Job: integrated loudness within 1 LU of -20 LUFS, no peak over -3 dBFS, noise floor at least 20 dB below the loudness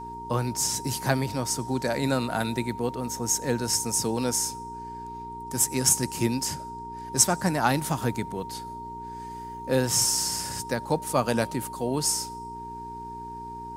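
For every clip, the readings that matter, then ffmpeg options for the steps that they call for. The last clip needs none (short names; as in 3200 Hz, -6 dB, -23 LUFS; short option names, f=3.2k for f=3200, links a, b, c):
hum 60 Hz; harmonics up to 420 Hz; hum level -43 dBFS; steady tone 930 Hz; tone level -36 dBFS; loudness -26.0 LUFS; peak -4.5 dBFS; loudness target -20.0 LUFS
-> -af "bandreject=f=60:t=h:w=4,bandreject=f=120:t=h:w=4,bandreject=f=180:t=h:w=4,bandreject=f=240:t=h:w=4,bandreject=f=300:t=h:w=4,bandreject=f=360:t=h:w=4,bandreject=f=420:t=h:w=4"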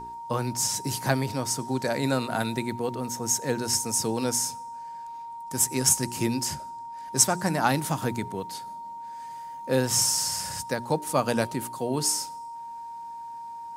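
hum none; steady tone 930 Hz; tone level -36 dBFS
-> -af "bandreject=f=930:w=30"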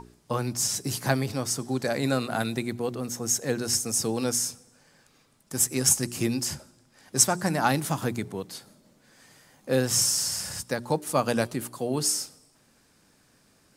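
steady tone none; loudness -26.5 LUFS; peak -5.0 dBFS; loudness target -20.0 LUFS
-> -af "volume=6.5dB,alimiter=limit=-3dB:level=0:latency=1"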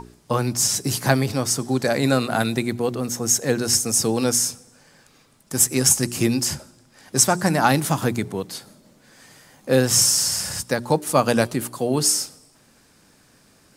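loudness -20.0 LUFS; peak -3.0 dBFS; noise floor -56 dBFS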